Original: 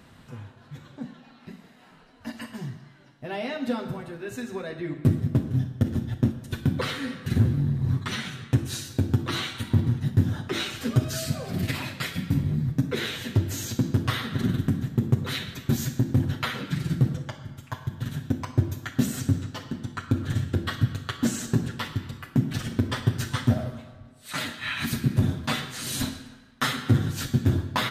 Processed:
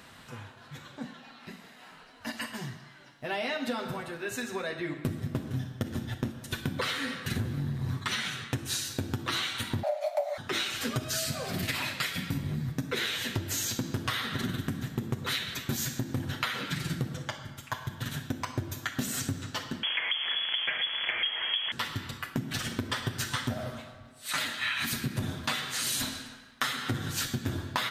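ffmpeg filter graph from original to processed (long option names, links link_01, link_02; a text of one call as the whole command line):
ffmpeg -i in.wav -filter_complex "[0:a]asettb=1/sr,asplit=3[link_01][link_02][link_03];[link_01]atrim=end=9.834[link_04];[link_02]atrim=start=9.83:end=10.38,asetpts=PTS-STARTPTS,afade=type=in:duration=0.004:curve=qsin,afade=type=out:start_time=0.546:duration=0.004:curve=qsin,highpass=45,equalizer=frequency=93:width=2:gain=4,afreqshift=480[link_05];[link_03]atrim=start=10.376[link_06];[link_04][link_05]acrossfade=duration=0.004:curve1=hsin:curve2=qsin[link_07];[link_07][link_06]acrossfade=duration=0.004:curve1=qsin:curve2=hsin,asettb=1/sr,asplit=3[link_08][link_09][link_10];[link_08]atrim=end=19.834[link_11];[link_09]atrim=start=19.83:end=21.72,asetpts=PTS-STARTPTS,afade=type=in:duration=0.004:curve=qsin,afade=type=out:start_time=1.886:duration=0.004:curve=qsin,aeval=exprs='val(0)+0.5*0.0631*sgn(val(0))':channel_layout=same,highpass=frequency=350:poles=1,lowpass=frequency=3000:width_type=q:width=0.5098,lowpass=frequency=3000:width_type=q:width=0.6013,lowpass=frequency=3000:width_type=q:width=0.9,lowpass=frequency=3000:width_type=q:width=2.563,afreqshift=-3500[link_12];[link_10]atrim=start=21.716[link_13];[link_11][link_12]acrossfade=duration=0.004:curve1=hsin:curve2=qsin[link_14];[link_14][link_13]acrossfade=duration=0.004:curve1=qsin:curve2=hsin,lowshelf=frequency=500:gain=-12,acompressor=threshold=-34dB:ratio=5,volume=6dB" out.wav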